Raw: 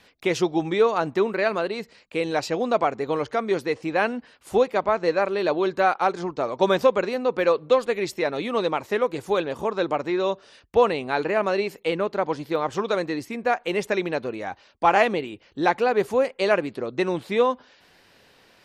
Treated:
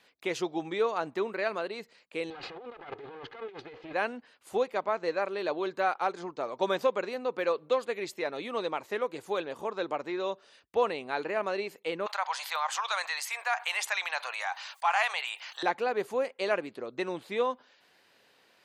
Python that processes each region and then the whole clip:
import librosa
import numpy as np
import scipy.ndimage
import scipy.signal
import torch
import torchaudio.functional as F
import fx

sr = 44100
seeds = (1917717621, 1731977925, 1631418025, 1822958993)

y = fx.chain(x, sr, fx.lower_of_two(delay_ms=2.4),
    fx.lowpass(hz=3800.0, slope=24),
    fx.over_compress(threshold_db=-34.0, ratio=-1.0), at=(2.3, 3.93))
y = fx.chain(y, sr, fx.steep_highpass(hz=780.0, slope=36),
    fx.peak_eq(hz=8300.0, db=4.5, octaves=1.3),
    fx.env_flatten(amount_pct=50), at=(12.06, 15.63))
y = fx.highpass(y, sr, hz=340.0, slope=6)
y = fx.notch(y, sr, hz=5500.0, q=16.0)
y = y * 10.0 ** (-7.0 / 20.0)